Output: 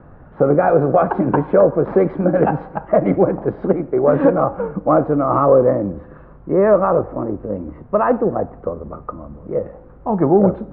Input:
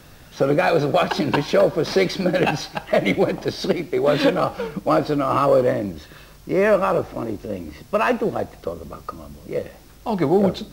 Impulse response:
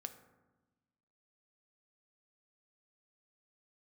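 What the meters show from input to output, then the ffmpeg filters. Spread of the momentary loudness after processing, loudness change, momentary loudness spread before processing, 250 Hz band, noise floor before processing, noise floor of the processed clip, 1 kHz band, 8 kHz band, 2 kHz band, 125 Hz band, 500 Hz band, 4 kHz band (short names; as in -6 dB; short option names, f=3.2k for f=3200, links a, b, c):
14 LU, +4.0 dB, 15 LU, +4.5 dB, -46 dBFS, -42 dBFS, +3.5 dB, n/a, -5.5 dB, +4.5 dB, +4.5 dB, under -25 dB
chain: -filter_complex "[0:a]lowpass=f=1.3k:w=0.5412,lowpass=f=1.3k:w=1.3066,asplit=2[a][b];[1:a]atrim=start_sample=2205[c];[b][c]afir=irnorm=-1:irlink=0,volume=-8dB[d];[a][d]amix=inputs=2:normalize=0,volume=2.5dB"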